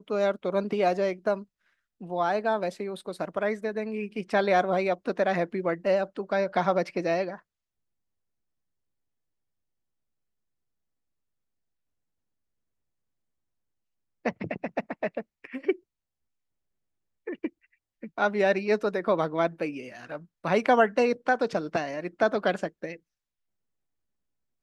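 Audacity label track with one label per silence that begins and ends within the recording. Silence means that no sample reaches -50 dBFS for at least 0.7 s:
7.400000	14.250000	silence
15.790000	17.270000	silence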